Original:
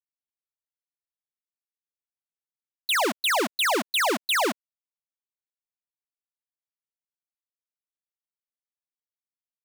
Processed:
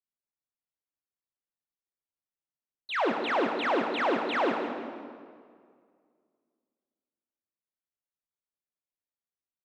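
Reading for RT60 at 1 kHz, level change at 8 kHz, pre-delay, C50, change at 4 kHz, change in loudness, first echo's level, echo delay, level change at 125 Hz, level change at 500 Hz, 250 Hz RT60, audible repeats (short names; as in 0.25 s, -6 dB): 2.0 s, under -25 dB, 3 ms, 4.0 dB, -12.0 dB, -5.0 dB, -9.0 dB, 0.163 s, n/a, 0.0 dB, 2.2 s, 3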